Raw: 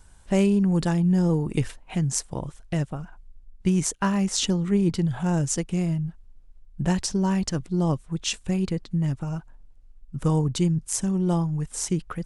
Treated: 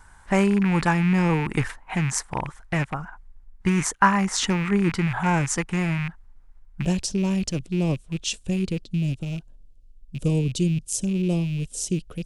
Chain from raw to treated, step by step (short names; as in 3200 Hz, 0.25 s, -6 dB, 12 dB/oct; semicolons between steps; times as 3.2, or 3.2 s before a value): rattling part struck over -29 dBFS, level -27 dBFS; band shelf 1300 Hz +11 dB, from 6.81 s -8 dB, from 8.8 s -15.5 dB